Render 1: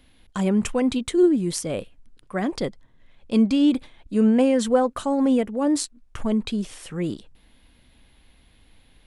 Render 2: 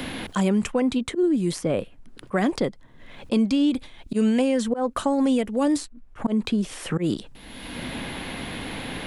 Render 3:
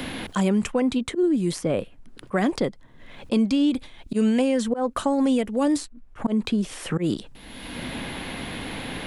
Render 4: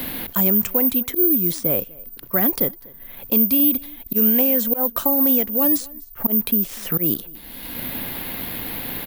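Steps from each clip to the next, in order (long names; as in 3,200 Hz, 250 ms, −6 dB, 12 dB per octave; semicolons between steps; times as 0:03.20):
volume swells 158 ms; multiband upward and downward compressor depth 100%
no processing that can be heard
single-tap delay 245 ms −24 dB; bad sample-rate conversion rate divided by 3×, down none, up zero stuff; level −1 dB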